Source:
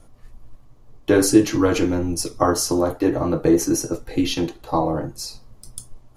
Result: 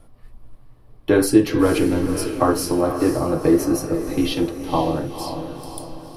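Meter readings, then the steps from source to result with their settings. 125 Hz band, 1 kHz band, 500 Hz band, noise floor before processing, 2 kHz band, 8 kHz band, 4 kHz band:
+0.5 dB, +0.5 dB, +1.0 dB, -48 dBFS, +0.5 dB, -5.0 dB, -2.0 dB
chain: bell 6600 Hz -13.5 dB 0.43 oct; on a send: diffused feedback echo 0.495 s, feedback 49%, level -8.5 dB

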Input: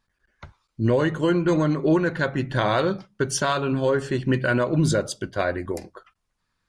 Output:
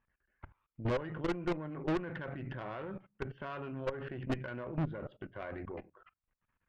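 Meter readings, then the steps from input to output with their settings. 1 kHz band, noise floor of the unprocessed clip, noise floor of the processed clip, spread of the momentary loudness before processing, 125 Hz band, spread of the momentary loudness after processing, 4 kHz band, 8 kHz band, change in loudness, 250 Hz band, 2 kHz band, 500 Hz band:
-16.0 dB, -76 dBFS, under -85 dBFS, 6 LU, -15.0 dB, 11 LU, -19.5 dB, under -30 dB, -16.0 dB, -15.5 dB, -17.0 dB, -16.5 dB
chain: steep low-pass 2900 Hz 48 dB/oct; level quantiser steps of 19 dB; tube stage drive 29 dB, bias 0.65

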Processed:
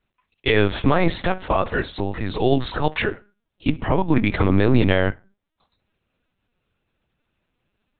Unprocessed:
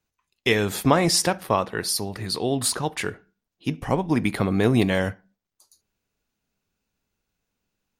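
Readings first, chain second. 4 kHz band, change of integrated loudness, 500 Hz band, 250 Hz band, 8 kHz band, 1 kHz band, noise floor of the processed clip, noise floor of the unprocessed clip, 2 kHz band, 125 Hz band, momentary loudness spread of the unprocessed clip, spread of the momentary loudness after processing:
-3.0 dB, +2.0 dB, +3.0 dB, +2.5 dB, under -40 dB, +2.0 dB, -79 dBFS, -85 dBFS, +3.5 dB, +4.0 dB, 11 LU, 10 LU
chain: limiter -13 dBFS, peak gain reduction 9 dB; LPC vocoder at 8 kHz pitch kept; gain +6.5 dB

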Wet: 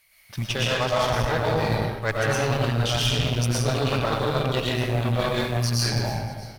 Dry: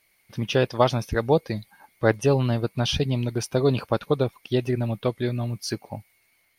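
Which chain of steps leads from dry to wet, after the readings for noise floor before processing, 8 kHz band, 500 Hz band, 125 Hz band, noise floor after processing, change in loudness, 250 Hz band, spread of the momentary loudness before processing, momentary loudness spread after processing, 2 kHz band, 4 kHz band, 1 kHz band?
-66 dBFS, +6.5 dB, -1.5 dB, +2.0 dB, -46 dBFS, +1.0 dB, -2.0 dB, 11 LU, 4 LU, +6.0 dB, +6.0 dB, +3.0 dB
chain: bell 320 Hz -13.5 dB 1.8 oct; in parallel at -6.5 dB: bit-crush 7-bit; on the sum: frequency-shifting echo 0.32 s, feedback 55%, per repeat -85 Hz, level -21 dB; digital reverb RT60 1.4 s, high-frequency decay 0.7×, pre-delay 75 ms, DRR -7 dB; added harmonics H 8 -19 dB, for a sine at -2.5 dBFS; reverse; compressor 6:1, threshold -24 dBFS, peak gain reduction 13.5 dB; reverse; gain +4 dB

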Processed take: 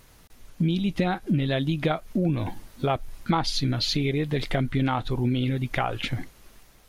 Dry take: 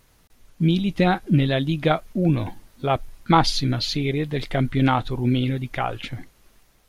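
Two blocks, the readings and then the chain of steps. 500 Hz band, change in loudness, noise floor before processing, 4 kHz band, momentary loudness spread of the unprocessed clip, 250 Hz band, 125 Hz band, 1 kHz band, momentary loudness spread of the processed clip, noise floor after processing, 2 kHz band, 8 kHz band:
-4.0 dB, -4.0 dB, -58 dBFS, -2.5 dB, 9 LU, -3.5 dB, -3.5 dB, -6.0 dB, 6 LU, -54 dBFS, -3.5 dB, -2.5 dB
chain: compressor 4:1, threshold -27 dBFS, peak gain reduction 14 dB; gain +4.5 dB

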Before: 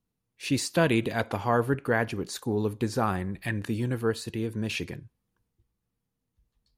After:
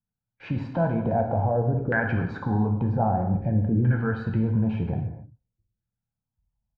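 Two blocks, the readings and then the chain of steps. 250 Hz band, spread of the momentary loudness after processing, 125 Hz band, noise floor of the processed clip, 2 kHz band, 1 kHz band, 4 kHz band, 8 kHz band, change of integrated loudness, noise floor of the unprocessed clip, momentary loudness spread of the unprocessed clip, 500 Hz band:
+3.5 dB, 7 LU, +8.0 dB, under -85 dBFS, 0.0 dB, +2.5 dB, under -15 dB, under -35 dB, +3.5 dB, -83 dBFS, 8 LU, +0.5 dB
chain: gate with hold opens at -45 dBFS; low shelf 380 Hz +6 dB; comb 1.3 ms, depth 56%; compressor 2:1, threshold -26 dBFS, peak gain reduction 7 dB; limiter -24 dBFS, peak gain reduction 10 dB; LFO low-pass saw down 0.52 Hz 430–1700 Hz; air absorption 110 m; non-linear reverb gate 0.32 s falling, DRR 2.5 dB; gain +5 dB

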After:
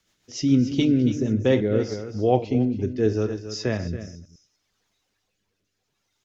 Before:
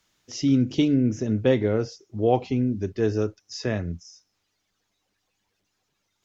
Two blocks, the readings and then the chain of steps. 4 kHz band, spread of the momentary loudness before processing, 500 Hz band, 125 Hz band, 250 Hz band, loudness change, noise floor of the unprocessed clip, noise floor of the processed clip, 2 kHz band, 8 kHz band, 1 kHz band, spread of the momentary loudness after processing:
+1.5 dB, 11 LU, +1.0 dB, +1.5 dB, +1.5 dB, +1.0 dB, -76 dBFS, -77 dBFS, +1.0 dB, n/a, 0.0 dB, 9 LU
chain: reverse delay 0.102 s, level -13 dB; de-hum 303.6 Hz, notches 32; on a send: echo 0.278 s -11 dB; on the sum: rotary speaker horn 7 Hz, later 0.7 Hz, at 0.98; gain +2.5 dB

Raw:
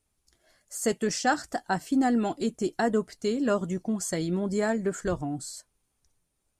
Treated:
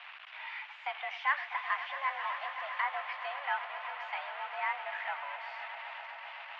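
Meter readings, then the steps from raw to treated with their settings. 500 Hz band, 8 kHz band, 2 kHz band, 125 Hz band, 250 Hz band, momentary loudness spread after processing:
-17.5 dB, under -40 dB, +1.5 dB, under -40 dB, under -40 dB, 9 LU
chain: zero-crossing step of -28.5 dBFS; tilt shelf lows -7 dB, about 1100 Hz; on a send: swelling echo 0.129 s, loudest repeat 5, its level -14 dB; on the sum: mistuned SSB +280 Hz 470–2600 Hz; gain -5.5 dB

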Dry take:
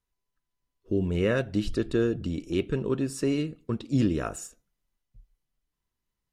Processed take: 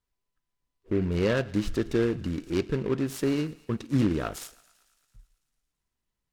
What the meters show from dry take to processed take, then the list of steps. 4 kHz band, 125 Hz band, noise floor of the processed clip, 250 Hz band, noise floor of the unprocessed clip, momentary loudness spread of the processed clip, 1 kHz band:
+0.5 dB, 0.0 dB, -85 dBFS, 0.0 dB, -85 dBFS, 7 LU, +1.5 dB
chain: on a send: thinning echo 0.111 s, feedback 73%, high-pass 690 Hz, level -20.5 dB; on the sum: noise-modulated delay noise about 1500 Hz, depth 0.038 ms

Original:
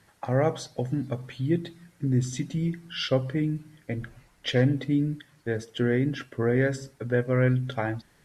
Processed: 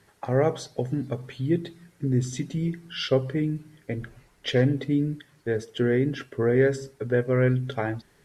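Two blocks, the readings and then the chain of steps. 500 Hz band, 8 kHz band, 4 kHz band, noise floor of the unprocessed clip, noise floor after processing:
+3.0 dB, 0.0 dB, 0.0 dB, -62 dBFS, -61 dBFS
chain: bell 410 Hz +8.5 dB 0.26 oct

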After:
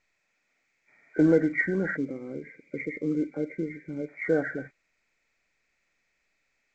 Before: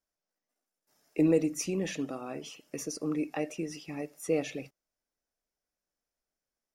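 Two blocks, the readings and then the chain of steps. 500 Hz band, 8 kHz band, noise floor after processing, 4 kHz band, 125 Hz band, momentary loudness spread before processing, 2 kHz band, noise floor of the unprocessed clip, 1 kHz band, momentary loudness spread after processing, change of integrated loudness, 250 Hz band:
+4.0 dB, under -20 dB, -75 dBFS, under -15 dB, +4.0 dB, 15 LU, +12.5 dB, under -85 dBFS, 0.0 dB, 17 LU, +4.5 dB, +4.0 dB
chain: nonlinear frequency compression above 1300 Hz 4:1; spectral gain 1.97–4.08, 600–2000 Hz -18 dB; gain +4 dB; µ-law 128 kbps 16000 Hz

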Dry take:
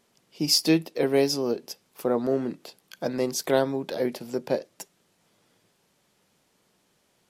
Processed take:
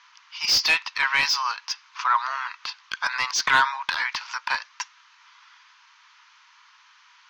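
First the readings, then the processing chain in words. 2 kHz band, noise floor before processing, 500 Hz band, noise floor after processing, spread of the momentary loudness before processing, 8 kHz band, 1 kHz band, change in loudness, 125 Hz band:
+16.0 dB, -69 dBFS, -21.0 dB, -56 dBFS, 16 LU, +2.0 dB, +12.0 dB, +2.5 dB, -17.0 dB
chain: Chebyshev band-pass 970–6400 Hz, order 5; overdrive pedal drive 22 dB, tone 1400 Hz, clips at -10 dBFS; gain +7.5 dB

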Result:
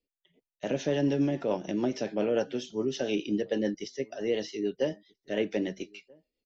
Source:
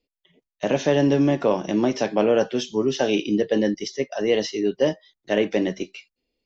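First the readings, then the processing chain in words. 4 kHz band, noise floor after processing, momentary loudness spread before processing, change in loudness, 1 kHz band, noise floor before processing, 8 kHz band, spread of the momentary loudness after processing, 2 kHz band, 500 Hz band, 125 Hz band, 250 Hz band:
-9.0 dB, under -85 dBFS, 8 LU, -8.5 dB, -11.5 dB, under -85 dBFS, n/a, 9 LU, -9.5 dB, -8.5 dB, -8.0 dB, -8.0 dB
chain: rotary speaker horn 7 Hz; notch 1100 Hz, Q 8.6; outdoor echo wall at 220 m, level -27 dB; gain -6.5 dB

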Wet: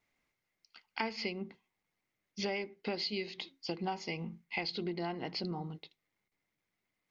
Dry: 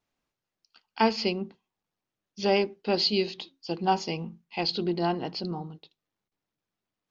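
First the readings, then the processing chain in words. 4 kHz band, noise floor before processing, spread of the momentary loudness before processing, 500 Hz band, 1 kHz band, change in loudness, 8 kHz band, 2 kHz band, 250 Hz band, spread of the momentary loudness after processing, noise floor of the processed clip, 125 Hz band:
-9.5 dB, under -85 dBFS, 13 LU, -11.5 dB, -12.0 dB, -10.0 dB, n/a, -4.5 dB, -9.5 dB, 10 LU, under -85 dBFS, -7.5 dB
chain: bell 2100 Hz +14.5 dB 0.27 oct; compressor 6:1, threshold -34 dBFS, peak gain reduction 16 dB

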